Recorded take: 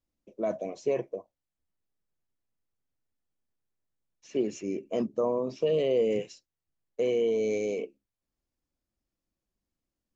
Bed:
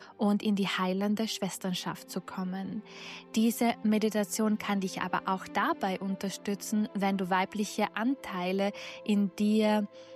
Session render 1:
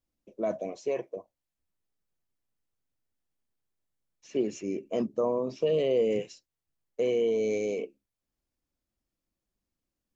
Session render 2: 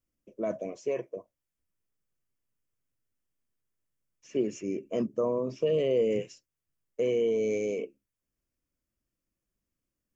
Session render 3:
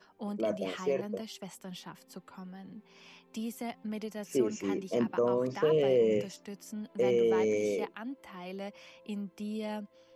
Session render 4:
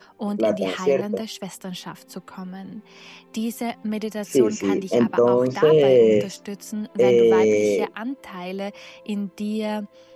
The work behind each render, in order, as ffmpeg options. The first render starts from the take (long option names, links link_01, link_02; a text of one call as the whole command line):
ffmpeg -i in.wav -filter_complex "[0:a]asettb=1/sr,asplit=3[link_01][link_02][link_03];[link_01]atrim=end=0.764[link_04];[link_02]atrim=start=0.76:end=1.17,asetpts=PTS-STARTPTS,afade=type=in:duration=0.004:curve=qsin,afade=type=out:start_time=0.406:duration=0.004:curve=qsin,lowshelf=frequency=240:gain=-11[link_05];[link_03]atrim=start=1.166[link_06];[link_04][link_05]acrossfade=duration=0.004:curve1=hsin:curve2=qsin[link_07];[link_07][link_06]acrossfade=duration=0.004:curve1=qsin:curve2=hsin" out.wav
ffmpeg -i in.wav -af "equalizer=frequency=125:width_type=o:width=0.33:gain=4,equalizer=frequency=800:width_type=o:width=0.33:gain=-9,equalizer=frequency=4000:width_type=o:width=0.33:gain=-11" out.wav
ffmpeg -i in.wav -i bed.wav -filter_complex "[1:a]volume=-11dB[link_01];[0:a][link_01]amix=inputs=2:normalize=0" out.wav
ffmpeg -i in.wav -af "volume=11dB" out.wav